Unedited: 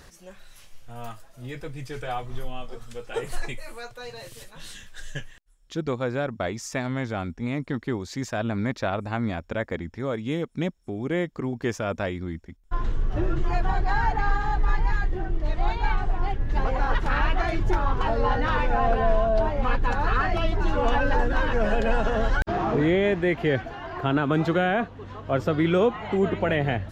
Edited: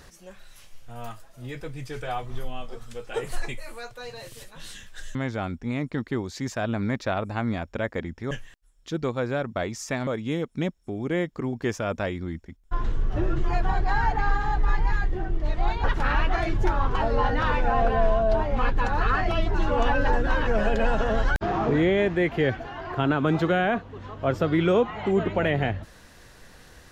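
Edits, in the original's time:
5.15–6.91 s: move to 10.07 s
15.84–16.90 s: delete

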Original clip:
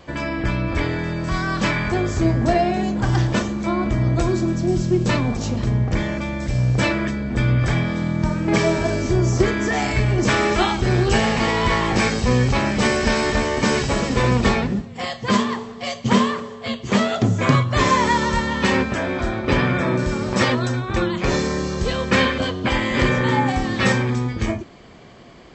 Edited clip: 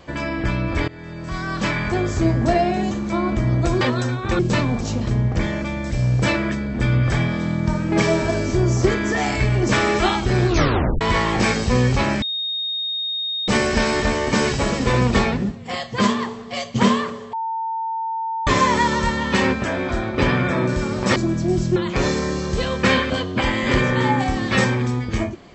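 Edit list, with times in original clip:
0.88–2.20 s: fade in equal-power, from -19 dB
2.91–3.45 s: delete
4.35–4.95 s: swap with 20.46–21.04 s
11.03 s: tape stop 0.54 s
12.78 s: add tone 3.71 kHz -22 dBFS 1.26 s
16.63–17.77 s: bleep 900 Hz -22 dBFS

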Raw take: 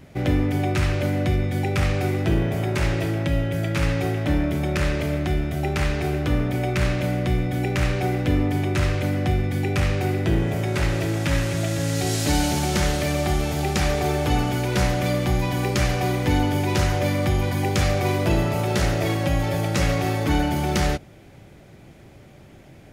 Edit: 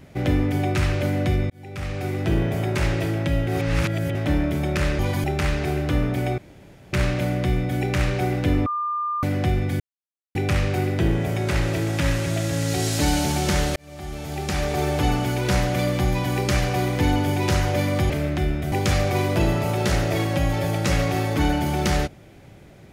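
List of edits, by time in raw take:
1.50–2.39 s: fade in
3.47–4.15 s: reverse
4.99–5.61 s: swap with 17.37–17.62 s
6.75 s: insert room tone 0.55 s
8.48–9.05 s: bleep 1.2 kHz -22.5 dBFS
9.62 s: insert silence 0.55 s
13.03–14.17 s: fade in

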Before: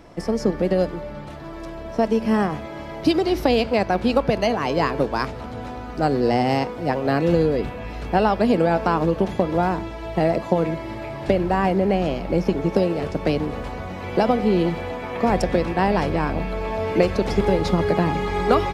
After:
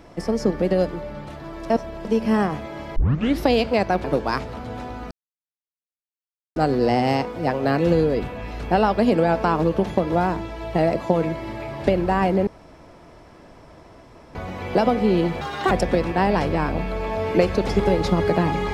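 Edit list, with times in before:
1.70–2.05 s: reverse
2.96 s: tape start 0.45 s
4.04–4.91 s: delete
5.98 s: insert silence 1.45 s
11.89–13.77 s: room tone
14.83–15.32 s: speed 163%

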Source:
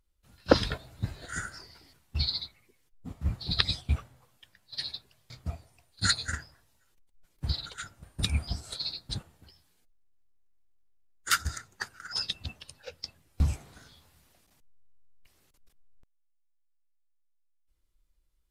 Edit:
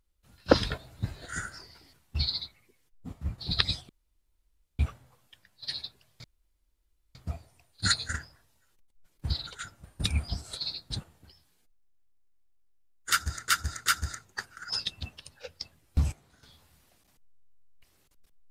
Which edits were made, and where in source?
3.10–3.38 s: fade out, to -7.5 dB
3.89 s: insert room tone 0.90 s
5.34 s: insert room tone 0.91 s
11.29–11.67 s: loop, 3 plays
13.55–13.86 s: gain -10 dB

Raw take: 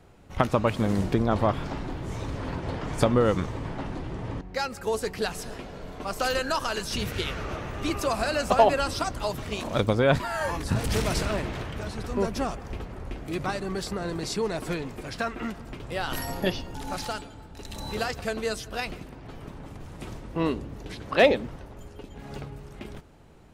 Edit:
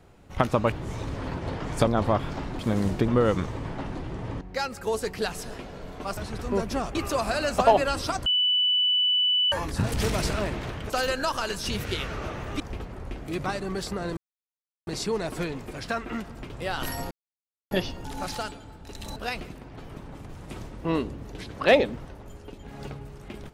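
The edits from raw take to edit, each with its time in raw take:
0.72–1.21 s: swap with 1.93–3.08 s
6.17–7.87 s: swap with 11.82–12.60 s
9.18–10.44 s: bleep 2.98 kHz -19.5 dBFS
14.17 s: insert silence 0.70 s
16.41 s: insert silence 0.60 s
17.86–18.67 s: delete

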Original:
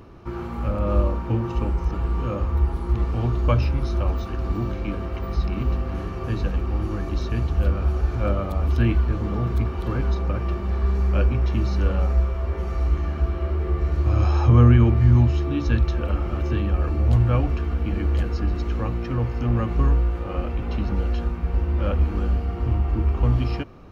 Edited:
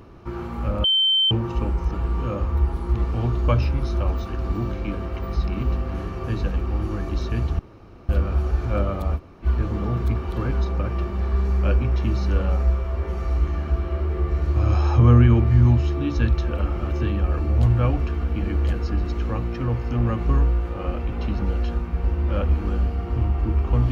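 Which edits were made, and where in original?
0.84–1.31 s: bleep 3.1 kHz -15.5 dBFS
7.59 s: insert room tone 0.50 s
8.67–8.95 s: room tone, crossfade 0.06 s

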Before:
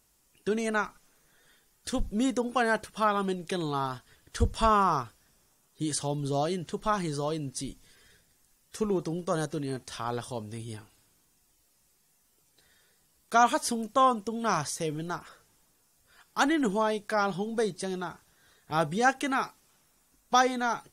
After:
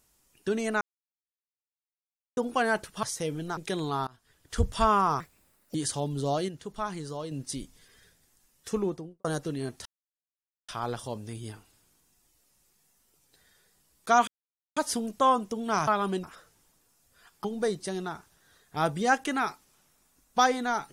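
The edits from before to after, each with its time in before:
0.81–2.37 s: mute
3.03–3.39 s: swap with 14.63–15.17 s
3.89–4.40 s: fade in, from -23.5 dB
5.02–5.82 s: speed 147%
6.56–7.39 s: gain -5.5 dB
8.83–9.32 s: studio fade out
9.93 s: insert silence 0.83 s
13.52 s: insert silence 0.49 s
16.38–17.40 s: delete

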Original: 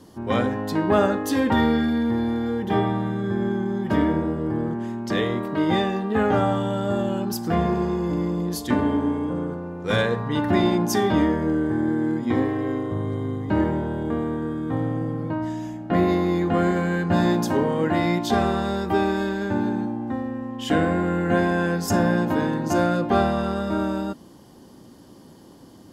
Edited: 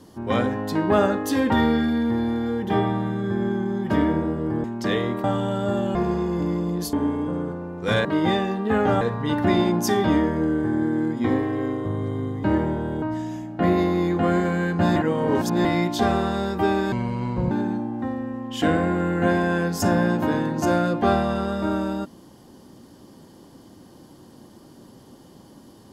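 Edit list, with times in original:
4.64–4.90 s: delete
5.50–6.46 s: move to 10.07 s
7.17–7.66 s: delete
8.64–8.95 s: delete
14.08–15.33 s: delete
17.27–17.96 s: reverse
19.23–19.59 s: speed 61%

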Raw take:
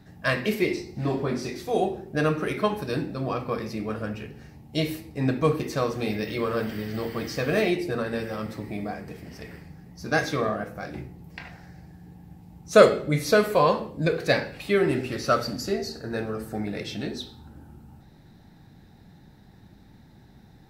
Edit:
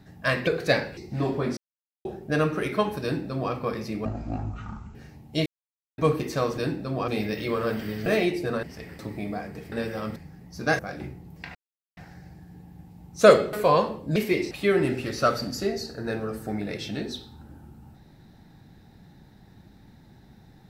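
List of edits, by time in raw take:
0.47–0.82 s: swap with 14.07–14.57 s
1.42–1.90 s: mute
2.88–3.38 s: copy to 5.98 s
3.90–4.35 s: speed 50%
4.86–5.38 s: mute
6.96–7.51 s: delete
8.08–8.52 s: swap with 9.25–9.61 s
10.24–10.73 s: delete
11.49 s: insert silence 0.42 s
13.05–13.44 s: delete

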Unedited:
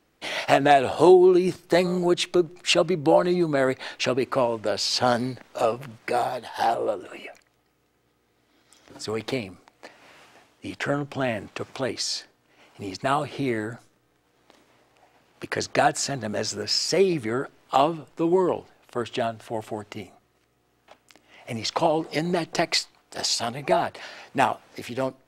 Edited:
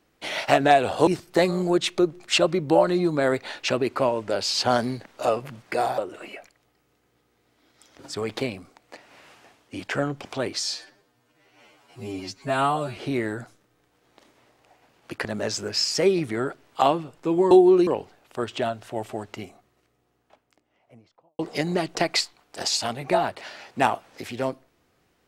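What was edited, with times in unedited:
1.07–1.43 s: move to 18.45 s
6.34–6.89 s: delete
11.16–11.68 s: delete
12.18–13.29 s: stretch 2×
15.57–16.19 s: delete
19.98–21.97 s: studio fade out

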